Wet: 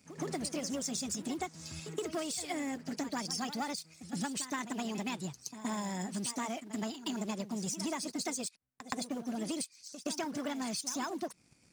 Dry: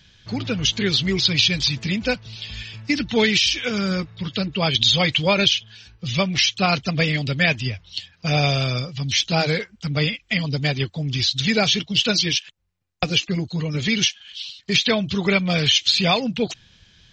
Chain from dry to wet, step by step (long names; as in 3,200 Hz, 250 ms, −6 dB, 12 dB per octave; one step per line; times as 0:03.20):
change of speed 1.46×
drawn EQ curve 240 Hz 0 dB, 2,000 Hz −12 dB, 3,700 Hz −30 dB, 8,500 Hz −23 dB
leveller curve on the samples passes 1
spectral tilt +4.5 dB per octave
downward compressor 6 to 1, threshold −34 dBFS, peak gain reduction 13 dB
echo ahead of the sound 120 ms −12 dB